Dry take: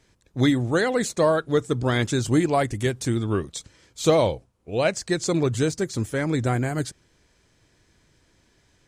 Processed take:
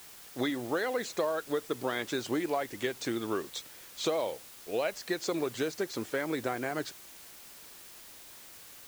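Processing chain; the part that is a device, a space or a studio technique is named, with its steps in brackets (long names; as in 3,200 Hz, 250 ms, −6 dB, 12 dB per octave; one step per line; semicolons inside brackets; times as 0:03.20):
baby monitor (band-pass filter 370–4,400 Hz; downward compressor, threshold −28 dBFS, peak gain reduction 12.5 dB; white noise bed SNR 16 dB)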